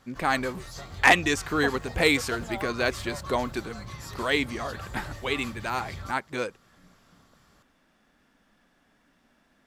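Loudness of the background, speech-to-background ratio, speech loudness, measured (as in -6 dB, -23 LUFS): -39.5 LUFS, 12.5 dB, -27.0 LUFS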